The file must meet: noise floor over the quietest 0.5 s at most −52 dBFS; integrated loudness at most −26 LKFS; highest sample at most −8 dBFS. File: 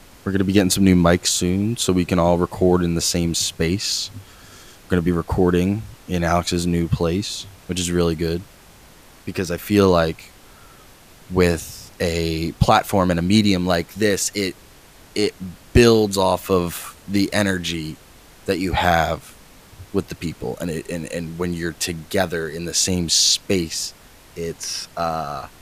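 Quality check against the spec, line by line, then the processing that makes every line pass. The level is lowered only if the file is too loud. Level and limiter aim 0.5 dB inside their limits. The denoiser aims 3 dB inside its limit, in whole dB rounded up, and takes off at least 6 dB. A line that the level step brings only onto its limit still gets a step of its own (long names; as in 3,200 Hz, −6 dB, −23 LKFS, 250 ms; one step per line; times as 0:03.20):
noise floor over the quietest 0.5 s −47 dBFS: out of spec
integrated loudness −20.0 LKFS: out of spec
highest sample −1.5 dBFS: out of spec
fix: level −6.5 dB
brickwall limiter −8.5 dBFS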